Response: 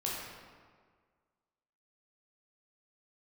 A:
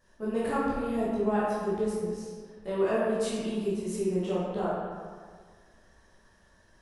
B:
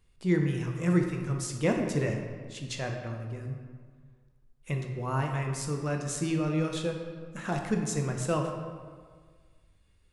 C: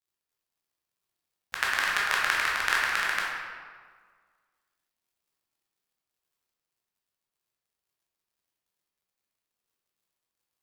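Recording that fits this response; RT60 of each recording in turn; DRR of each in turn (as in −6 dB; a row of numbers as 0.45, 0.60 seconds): C; 1.7, 1.7, 1.7 seconds; −9.5, 2.5, −5.5 decibels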